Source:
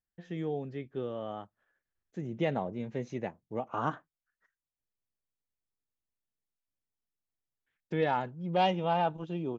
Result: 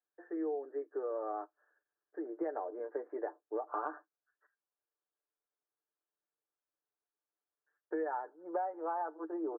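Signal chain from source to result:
Chebyshev band-pass filter 320–1,700 Hz, order 5
comb filter 6.8 ms, depth 54%
downward compressor 10 to 1, threshold −36 dBFS, peak gain reduction 16 dB
level +3 dB

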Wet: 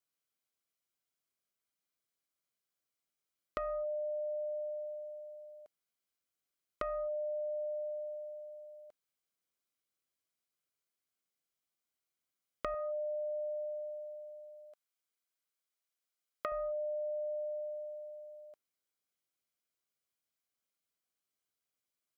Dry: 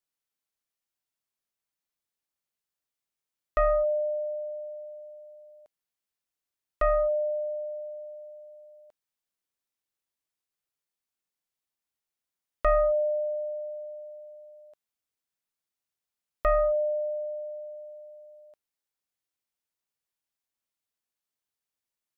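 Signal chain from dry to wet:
0:12.74–0:16.52: high-pass filter 520 Hz 6 dB per octave
downward compressor 10 to 1, threshold −35 dBFS, peak gain reduction 15.5 dB
notch comb filter 900 Hz

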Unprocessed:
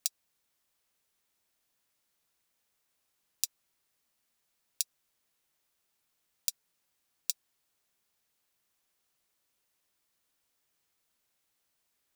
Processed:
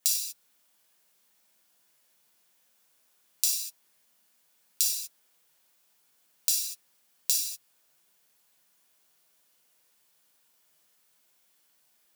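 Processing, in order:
high-pass filter 150 Hz 24 dB per octave
high-shelf EQ 11,000 Hz +4 dB
reverb whose tail is shaped and stops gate 270 ms falling, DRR −6.5 dB
level +1 dB

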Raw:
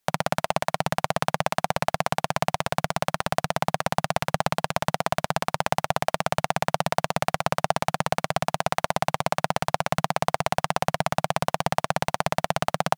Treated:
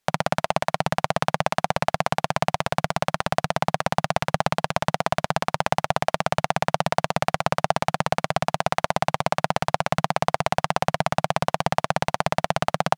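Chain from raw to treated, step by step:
high-shelf EQ 10,000 Hz −9.5 dB
level +2 dB

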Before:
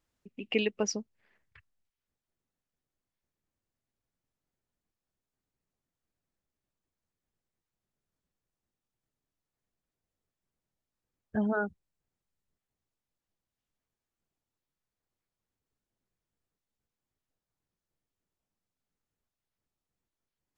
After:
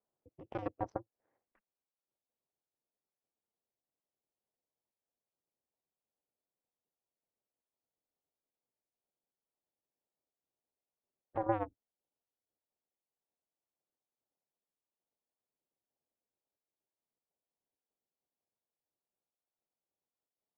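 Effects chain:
high-pass filter 290 Hz 12 dB per octave
brickwall limiter −26.5 dBFS, peak gain reduction 10.5 dB
harmonic generator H 3 −7 dB, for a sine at −26.5 dBFS
low-pass with resonance 720 Hz, resonance Q 1.5
ring modulation 110 Hz
tape wow and flutter 78 cents
level +7.5 dB

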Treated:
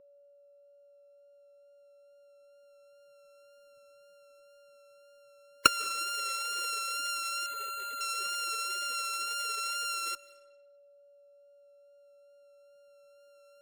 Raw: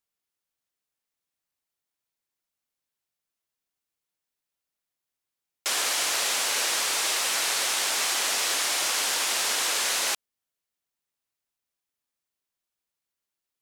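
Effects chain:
samples sorted by size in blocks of 32 samples
camcorder AGC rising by 8.8 dB per second
gate on every frequency bin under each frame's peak −20 dB strong
high-shelf EQ 12,000 Hz −8 dB
in parallel at −7 dB: fuzz pedal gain 27 dB, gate −24 dBFS
on the sum: tape wow and flutter 22 cents
steady tone 570 Hz −43 dBFS
Butterworth band-reject 730 Hz, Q 1.7
on a send at −20 dB: convolution reverb RT60 1.1 s, pre-delay 116 ms
0:07.46–0:08.01: on the sum: bad sample-rate conversion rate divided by 8×, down filtered, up hold
level −9 dB

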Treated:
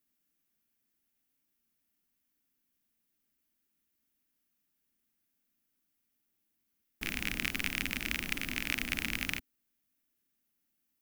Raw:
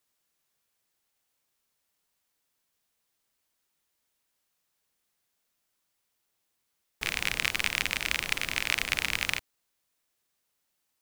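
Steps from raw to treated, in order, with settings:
octave-band graphic EQ 125/250/500/1,000/2,000/4,000/8,000 Hz −6/+10/−10/−10/−3/−8/−8 dB
level +1.5 dB

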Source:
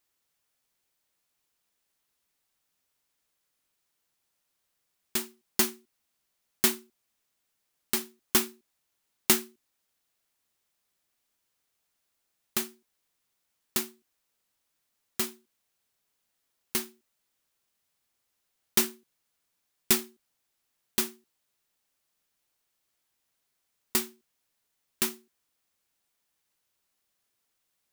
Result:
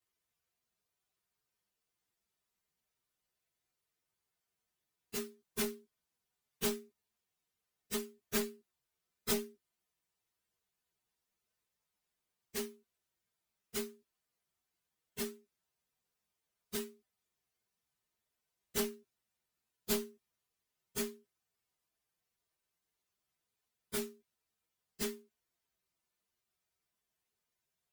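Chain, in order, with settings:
partials spread apart or drawn together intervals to 126%
notch comb filter 280 Hz
asymmetric clip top −36 dBFS
level +1.5 dB

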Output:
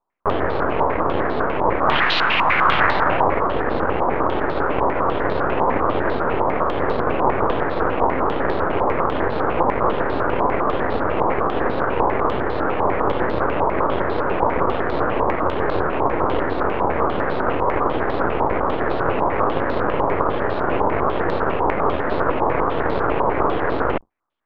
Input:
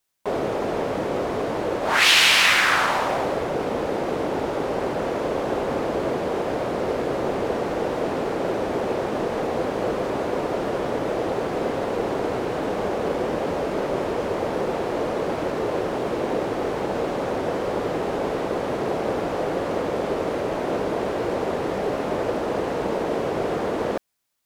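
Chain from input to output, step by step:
sub-octave generator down 2 octaves, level +3 dB
flat-topped bell 550 Hz +11.5 dB 2.9 octaves
half-wave rectification
high-frequency loss of the air 190 metres
low-pass on a step sequencer 10 Hz 980–4,000 Hz
level −3.5 dB

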